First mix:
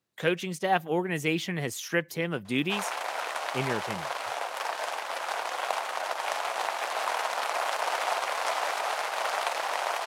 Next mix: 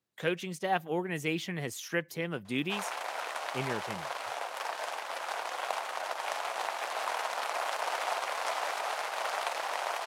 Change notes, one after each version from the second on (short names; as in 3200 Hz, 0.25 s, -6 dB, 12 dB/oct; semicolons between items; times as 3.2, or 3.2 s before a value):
speech -4.5 dB; background -4.0 dB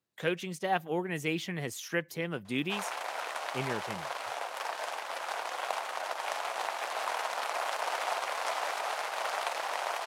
none